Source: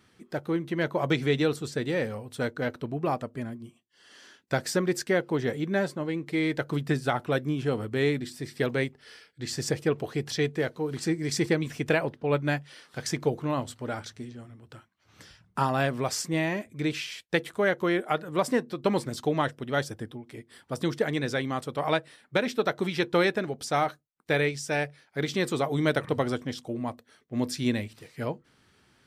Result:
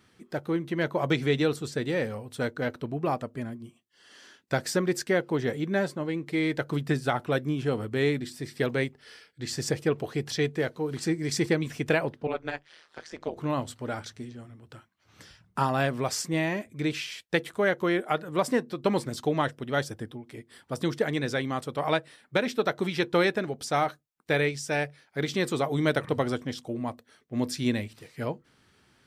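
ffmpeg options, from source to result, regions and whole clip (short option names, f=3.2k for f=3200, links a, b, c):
-filter_complex "[0:a]asettb=1/sr,asplit=3[a][b][c];[a]atrim=end=12.274[d];[b]atrim=start=12.27:end=13.37,asetpts=PTS-STARTPTS,afade=t=in:d=0.004:c=qsin,afade=t=out:st=1.096:d=0.004:c=qsin,deesser=0.8,highpass=360,lowpass=6.2k,tremolo=f=160:d=0.974[e];[c]atrim=start=13.366[f];[d][e]acrossfade=d=0.004:c1=hsin:c2=qsin[g];[g][f]acrossfade=d=0.004:c1=qsin:c2=hsin"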